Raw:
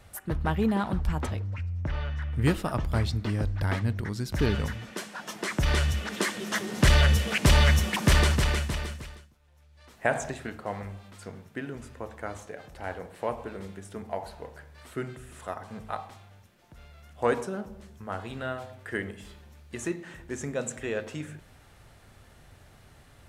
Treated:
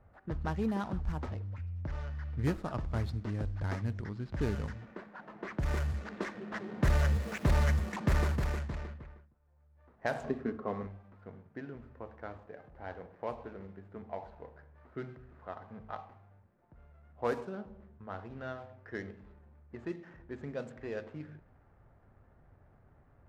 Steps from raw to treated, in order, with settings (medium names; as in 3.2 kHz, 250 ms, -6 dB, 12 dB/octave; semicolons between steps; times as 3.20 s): median filter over 15 samples; level-controlled noise filter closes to 1.6 kHz, open at -21 dBFS; 6.98–7.56 s: small samples zeroed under -38.5 dBFS; 10.24–10.87 s: small resonant body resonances 250/410/1100 Hz, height 14 dB; trim -7 dB